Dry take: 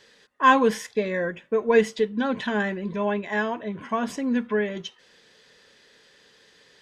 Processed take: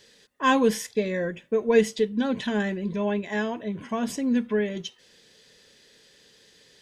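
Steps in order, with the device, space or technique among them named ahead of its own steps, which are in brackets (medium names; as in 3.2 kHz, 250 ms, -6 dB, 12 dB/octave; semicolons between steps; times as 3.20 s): smiley-face EQ (bass shelf 190 Hz +3.5 dB; peaking EQ 1.2 kHz -7 dB 1.5 oct; treble shelf 6.6 kHz +8 dB)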